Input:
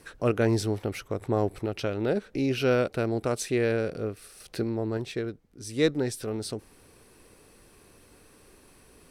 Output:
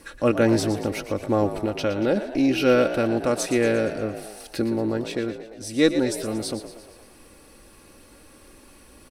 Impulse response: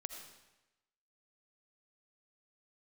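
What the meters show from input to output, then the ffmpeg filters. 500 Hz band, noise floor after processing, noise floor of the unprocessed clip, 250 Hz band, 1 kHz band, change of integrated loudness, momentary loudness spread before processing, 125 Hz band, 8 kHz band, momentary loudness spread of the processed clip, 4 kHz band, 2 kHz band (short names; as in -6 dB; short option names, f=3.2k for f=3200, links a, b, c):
+5.0 dB, -51 dBFS, -57 dBFS, +6.5 dB, +6.0 dB, +5.0 dB, 11 LU, 0.0 dB, +5.5 dB, 12 LU, +5.5 dB, +5.5 dB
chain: -filter_complex "[0:a]aecho=1:1:3.6:0.54,asplit=7[a][b][c][d][e][f][g];[b]adelay=116,afreqshift=51,volume=-11.5dB[h];[c]adelay=232,afreqshift=102,volume=-16.4dB[i];[d]adelay=348,afreqshift=153,volume=-21.3dB[j];[e]adelay=464,afreqshift=204,volume=-26.1dB[k];[f]adelay=580,afreqshift=255,volume=-31dB[l];[g]adelay=696,afreqshift=306,volume=-35.9dB[m];[a][h][i][j][k][l][m]amix=inputs=7:normalize=0,volume=4dB"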